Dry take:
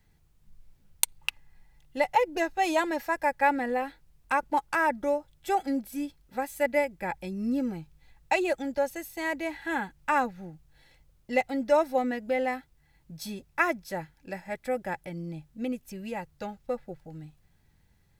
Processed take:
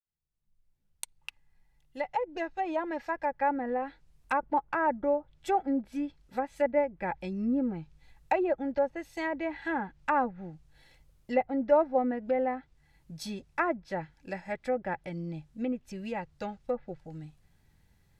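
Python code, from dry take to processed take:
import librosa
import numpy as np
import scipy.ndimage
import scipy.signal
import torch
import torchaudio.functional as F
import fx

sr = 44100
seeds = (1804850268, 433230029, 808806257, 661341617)

y = fx.fade_in_head(x, sr, length_s=4.76)
y = fx.env_lowpass_down(y, sr, base_hz=1200.0, full_db=-26.0)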